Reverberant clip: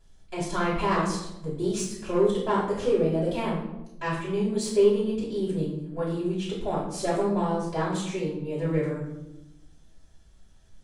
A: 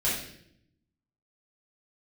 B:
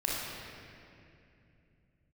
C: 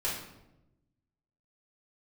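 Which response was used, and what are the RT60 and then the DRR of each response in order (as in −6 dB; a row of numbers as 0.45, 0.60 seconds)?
C; 0.70, 2.7, 0.95 seconds; −9.0, −5.0, −9.5 decibels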